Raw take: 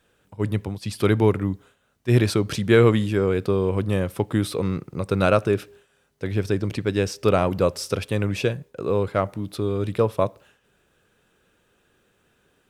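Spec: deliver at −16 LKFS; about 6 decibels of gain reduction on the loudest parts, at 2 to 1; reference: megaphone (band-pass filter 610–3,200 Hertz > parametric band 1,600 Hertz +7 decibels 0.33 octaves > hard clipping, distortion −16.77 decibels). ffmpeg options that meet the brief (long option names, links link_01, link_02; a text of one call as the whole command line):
ffmpeg -i in.wav -af "acompressor=threshold=-22dB:ratio=2,highpass=610,lowpass=3200,equalizer=frequency=1600:width_type=o:width=0.33:gain=7,asoftclip=type=hard:threshold=-20dB,volume=17.5dB" out.wav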